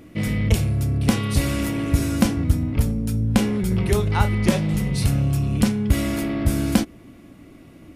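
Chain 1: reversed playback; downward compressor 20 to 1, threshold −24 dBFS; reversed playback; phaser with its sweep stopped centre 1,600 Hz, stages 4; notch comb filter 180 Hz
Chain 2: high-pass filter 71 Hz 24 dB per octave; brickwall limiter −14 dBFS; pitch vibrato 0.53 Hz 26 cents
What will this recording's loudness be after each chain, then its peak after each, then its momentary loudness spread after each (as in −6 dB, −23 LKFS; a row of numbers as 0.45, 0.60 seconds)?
−31.5, −24.0 LKFS; −17.5, −14.0 dBFS; 7, 2 LU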